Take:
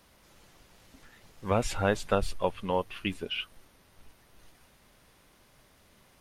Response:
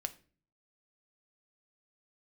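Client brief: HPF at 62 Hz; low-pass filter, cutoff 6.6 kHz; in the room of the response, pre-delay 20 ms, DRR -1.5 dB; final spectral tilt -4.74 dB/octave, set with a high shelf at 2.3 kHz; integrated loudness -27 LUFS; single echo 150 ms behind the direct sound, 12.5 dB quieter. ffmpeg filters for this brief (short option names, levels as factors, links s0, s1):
-filter_complex "[0:a]highpass=62,lowpass=6600,highshelf=f=2300:g=-3.5,aecho=1:1:150:0.237,asplit=2[s0][s1];[1:a]atrim=start_sample=2205,adelay=20[s2];[s1][s2]afir=irnorm=-1:irlink=0,volume=1.26[s3];[s0][s3]amix=inputs=2:normalize=0"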